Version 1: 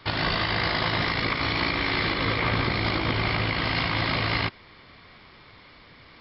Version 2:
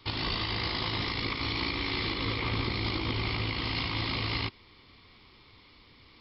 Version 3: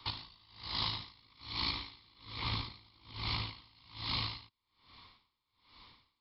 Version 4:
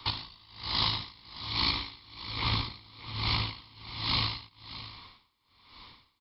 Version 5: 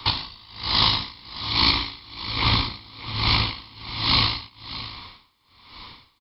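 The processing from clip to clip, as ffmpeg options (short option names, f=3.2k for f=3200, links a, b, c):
-af "equalizer=f=160:t=o:w=0.67:g=-7,equalizer=f=630:t=o:w=0.67:g=-11,equalizer=f=1.6k:t=o:w=0.67:g=-12,volume=-2.5dB"
-filter_complex "[0:a]equalizer=f=400:t=o:w=0.67:g=-5,equalizer=f=1k:t=o:w=0.67:g=10,equalizer=f=4k:t=o:w=0.67:g=8,acrossover=split=220|3000[a][b][c];[b]acompressor=threshold=-34dB:ratio=6[d];[a][d][c]amix=inputs=3:normalize=0,aeval=exprs='val(0)*pow(10,-31*(0.5-0.5*cos(2*PI*1.2*n/s))/20)':c=same,volume=-4dB"
-af "aecho=1:1:616:0.188,volume=7dB"
-filter_complex "[0:a]asplit=2[a][b];[b]adelay=33,volume=-11dB[c];[a][c]amix=inputs=2:normalize=0,volume=9dB"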